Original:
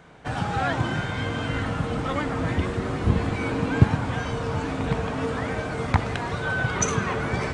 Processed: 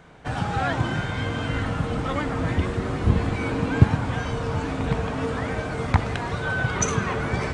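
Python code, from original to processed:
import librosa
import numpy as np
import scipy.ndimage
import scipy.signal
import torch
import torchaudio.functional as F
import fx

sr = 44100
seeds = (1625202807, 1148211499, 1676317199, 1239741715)

y = fx.low_shelf(x, sr, hz=63.0, db=6.0)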